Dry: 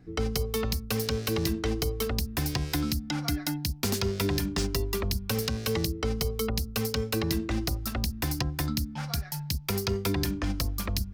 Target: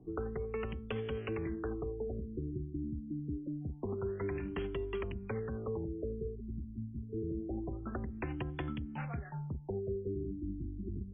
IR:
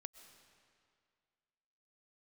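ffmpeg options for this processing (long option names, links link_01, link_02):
-filter_complex "[0:a]equalizer=frequency=380:width_type=o:width=0.49:gain=10,acrossover=split=110|1000[link_01][link_02][link_03];[link_01]acompressor=threshold=-39dB:ratio=4[link_04];[link_02]acompressor=threshold=-34dB:ratio=4[link_05];[link_03]acompressor=threshold=-34dB:ratio=4[link_06];[link_04][link_05][link_06]amix=inputs=3:normalize=0,afftfilt=real='re*lt(b*sr/1024,350*pow(3500/350,0.5+0.5*sin(2*PI*0.26*pts/sr)))':imag='im*lt(b*sr/1024,350*pow(3500/350,0.5+0.5*sin(2*PI*0.26*pts/sr)))':win_size=1024:overlap=0.75,volume=-4dB"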